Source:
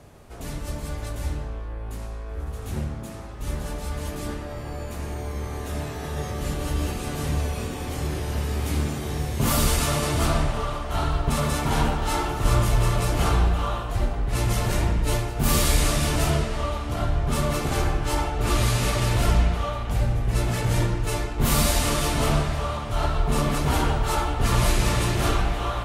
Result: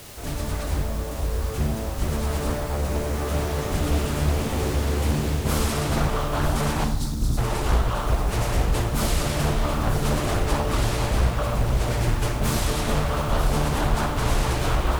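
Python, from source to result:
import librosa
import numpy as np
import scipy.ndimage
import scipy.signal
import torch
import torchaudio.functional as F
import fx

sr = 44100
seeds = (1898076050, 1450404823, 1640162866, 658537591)

p1 = fx.quant_dither(x, sr, seeds[0], bits=6, dither='triangular')
p2 = x + (p1 * 10.0 ** (-6.0 / 20.0))
p3 = fx.rider(p2, sr, range_db=4, speed_s=0.5)
p4 = fx.stretch_vocoder(p3, sr, factor=0.58)
p5 = fx.echo_alternate(p4, sr, ms=472, hz=1100.0, feedback_pct=58, wet_db=-4)
p6 = fx.spec_box(p5, sr, start_s=6.84, length_s=0.54, low_hz=320.0, high_hz=3700.0, gain_db=-17)
p7 = fx.rev_schroeder(p6, sr, rt60_s=0.68, comb_ms=32, drr_db=6.0)
p8 = fx.doppler_dist(p7, sr, depth_ms=0.84)
y = p8 * 10.0 ** (-3.0 / 20.0)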